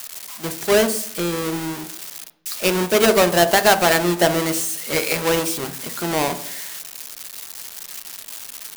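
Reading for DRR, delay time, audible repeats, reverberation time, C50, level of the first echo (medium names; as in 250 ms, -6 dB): 9.0 dB, no echo, no echo, 0.65 s, 14.0 dB, no echo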